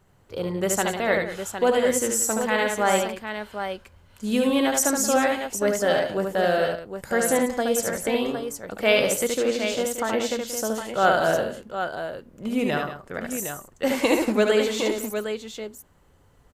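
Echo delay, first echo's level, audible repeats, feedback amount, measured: 73 ms, -4.0 dB, 3, no regular repeats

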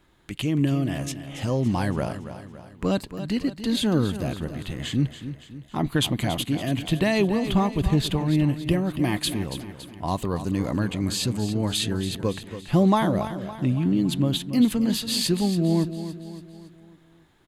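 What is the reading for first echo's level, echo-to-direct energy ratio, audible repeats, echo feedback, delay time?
-11.5 dB, -10.5 dB, 4, 50%, 281 ms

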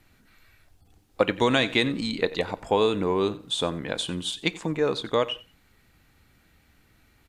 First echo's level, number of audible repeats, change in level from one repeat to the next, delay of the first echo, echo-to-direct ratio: -19.0 dB, 2, -14.5 dB, 90 ms, -19.0 dB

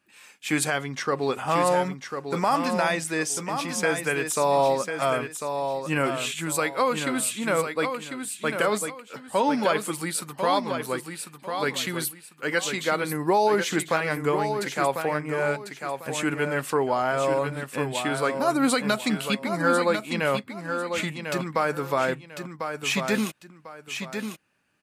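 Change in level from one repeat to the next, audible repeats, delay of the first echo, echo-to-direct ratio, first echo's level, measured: -11.5 dB, 2, 1047 ms, -6.5 dB, -7.0 dB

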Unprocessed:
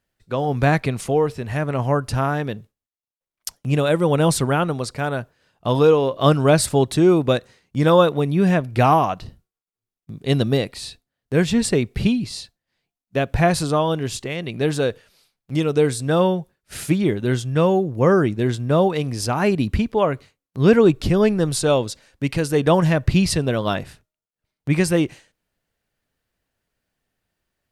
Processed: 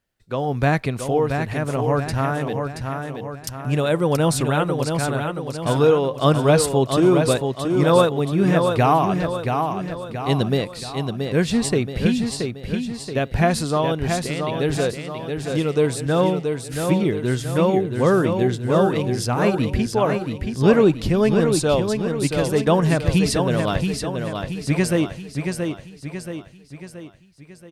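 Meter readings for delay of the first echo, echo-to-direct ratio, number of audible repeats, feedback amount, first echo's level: 677 ms, -4.5 dB, 5, 49%, -5.5 dB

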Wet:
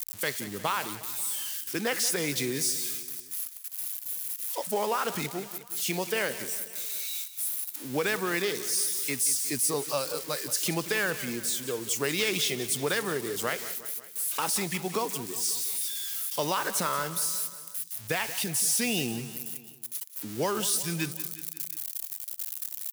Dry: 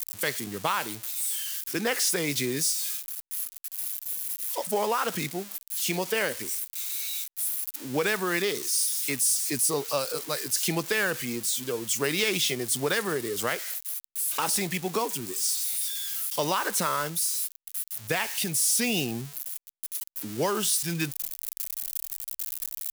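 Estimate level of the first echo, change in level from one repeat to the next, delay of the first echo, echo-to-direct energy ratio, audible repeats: -14.5 dB, -4.5 dB, 180 ms, -12.5 dB, 4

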